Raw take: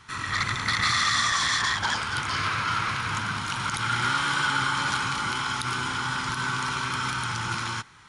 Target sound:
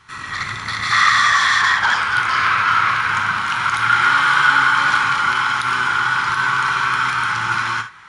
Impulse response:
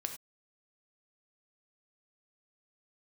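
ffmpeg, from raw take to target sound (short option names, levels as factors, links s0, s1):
-filter_complex "[0:a]asetnsamples=n=441:p=0,asendcmd='0.91 equalizer g 14',equalizer=f=1500:w=0.55:g=4[s0];[1:a]atrim=start_sample=2205,atrim=end_sample=3528[s1];[s0][s1]afir=irnorm=-1:irlink=0,volume=0.891"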